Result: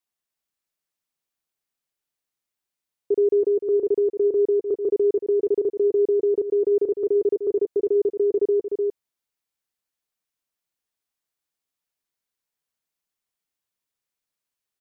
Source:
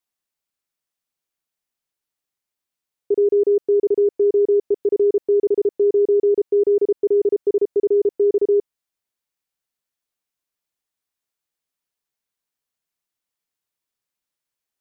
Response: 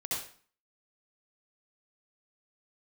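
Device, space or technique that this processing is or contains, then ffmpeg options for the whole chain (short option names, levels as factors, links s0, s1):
ducked delay: -filter_complex "[0:a]asplit=3[s0][s1][s2];[s1]adelay=301,volume=0.596[s3];[s2]apad=whole_len=666349[s4];[s3][s4]sidechaincompress=threshold=0.0562:ratio=8:attack=16:release=190[s5];[s0][s5]amix=inputs=2:normalize=0,volume=0.75"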